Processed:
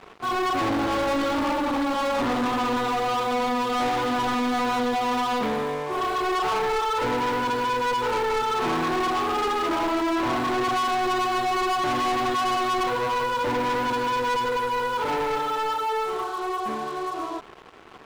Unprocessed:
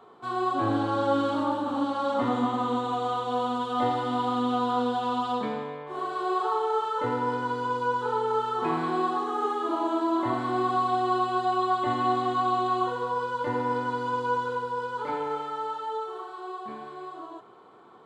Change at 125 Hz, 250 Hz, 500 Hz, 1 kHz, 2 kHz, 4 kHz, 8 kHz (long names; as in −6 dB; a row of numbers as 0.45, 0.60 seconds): 0.0 dB, +2.0 dB, +3.0 dB, +3.0 dB, +8.5 dB, +9.0 dB, can't be measured